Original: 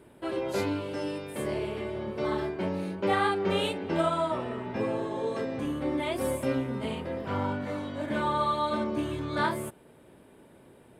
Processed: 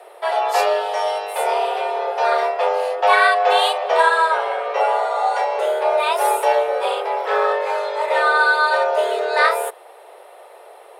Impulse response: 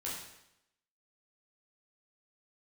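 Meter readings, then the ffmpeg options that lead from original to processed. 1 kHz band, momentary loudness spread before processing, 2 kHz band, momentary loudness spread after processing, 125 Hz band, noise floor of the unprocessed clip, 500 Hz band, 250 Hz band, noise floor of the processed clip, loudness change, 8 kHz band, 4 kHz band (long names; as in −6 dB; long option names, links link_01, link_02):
+15.5 dB, 7 LU, +17.5 dB, 8 LU, below −30 dB, −55 dBFS, +11.5 dB, below −10 dB, −44 dBFS, +12.0 dB, +12.0 dB, +12.5 dB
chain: -af "afreqshift=320,acontrast=61,volume=5.5dB"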